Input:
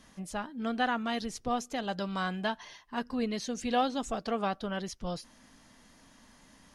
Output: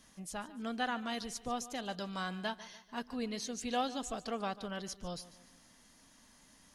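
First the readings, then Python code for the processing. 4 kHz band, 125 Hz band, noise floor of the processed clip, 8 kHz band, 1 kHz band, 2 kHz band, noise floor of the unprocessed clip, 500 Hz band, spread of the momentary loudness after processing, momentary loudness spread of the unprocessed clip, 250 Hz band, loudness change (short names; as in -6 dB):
-3.0 dB, -6.5 dB, -63 dBFS, 0.0 dB, -6.0 dB, -5.0 dB, -60 dBFS, -6.5 dB, 9 LU, 9 LU, -6.5 dB, -5.5 dB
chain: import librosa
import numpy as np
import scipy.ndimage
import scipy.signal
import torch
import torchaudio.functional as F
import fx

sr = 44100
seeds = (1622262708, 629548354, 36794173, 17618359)

p1 = fx.high_shelf(x, sr, hz=4300.0, db=9.0)
p2 = p1 + fx.echo_feedback(p1, sr, ms=146, feedback_pct=44, wet_db=-17.0, dry=0)
y = p2 * librosa.db_to_amplitude(-6.5)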